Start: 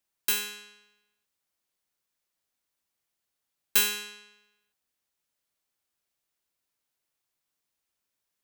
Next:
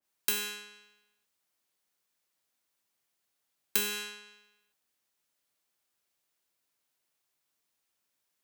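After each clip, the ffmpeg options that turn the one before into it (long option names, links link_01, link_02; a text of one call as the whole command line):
ffmpeg -i in.wav -filter_complex "[0:a]lowshelf=frequency=77:gain=-10.5,acrossover=split=500[link_01][link_02];[link_02]acompressor=threshold=-28dB:ratio=10[link_03];[link_01][link_03]amix=inputs=2:normalize=0,adynamicequalizer=threshold=0.00282:dfrequency=1900:dqfactor=0.7:tfrequency=1900:tqfactor=0.7:attack=5:release=100:ratio=0.375:range=2:mode=cutabove:tftype=highshelf,volume=2.5dB" out.wav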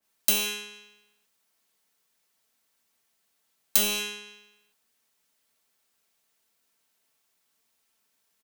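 ffmpeg -i in.wav -filter_complex "[0:a]aecho=1:1:4.5:0.43,acrossover=split=190|2900[link_01][link_02][link_03];[link_02]aeval=exprs='(mod(44.7*val(0)+1,2)-1)/44.7':channel_layout=same[link_04];[link_01][link_04][link_03]amix=inputs=3:normalize=0,volume=6.5dB" out.wav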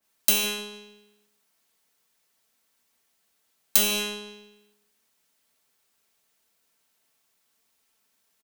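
ffmpeg -i in.wav -filter_complex "[0:a]asplit=2[link_01][link_02];[link_02]adelay=149,lowpass=frequency=880:poles=1,volume=-7.5dB,asplit=2[link_03][link_04];[link_04]adelay=149,lowpass=frequency=880:poles=1,volume=0.35,asplit=2[link_05][link_06];[link_06]adelay=149,lowpass=frequency=880:poles=1,volume=0.35,asplit=2[link_07][link_08];[link_08]adelay=149,lowpass=frequency=880:poles=1,volume=0.35[link_09];[link_01][link_03][link_05][link_07][link_09]amix=inputs=5:normalize=0,volume=2dB" out.wav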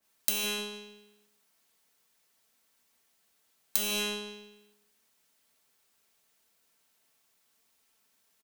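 ffmpeg -i in.wav -af "acompressor=threshold=-26dB:ratio=6" out.wav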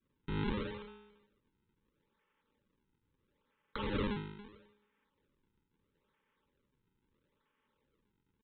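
ffmpeg -i in.wav -af "aresample=8000,acrusher=samples=8:mix=1:aa=0.000001:lfo=1:lforange=12.8:lforate=0.76,aresample=44100,asuperstop=centerf=700:order=20:qfactor=3.3" out.wav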